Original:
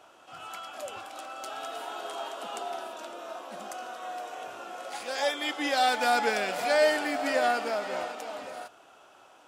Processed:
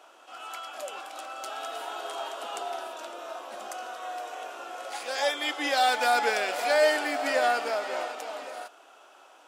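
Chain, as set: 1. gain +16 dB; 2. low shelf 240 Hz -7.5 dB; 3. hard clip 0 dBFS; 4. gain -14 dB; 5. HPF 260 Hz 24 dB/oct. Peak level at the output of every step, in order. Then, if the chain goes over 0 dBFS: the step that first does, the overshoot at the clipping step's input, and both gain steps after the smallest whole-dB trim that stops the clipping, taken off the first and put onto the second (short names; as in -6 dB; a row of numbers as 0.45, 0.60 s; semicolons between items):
+3.5, +4.0, 0.0, -14.0, -10.0 dBFS; step 1, 4.0 dB; step 1 +12 dB, step 4 -10 dB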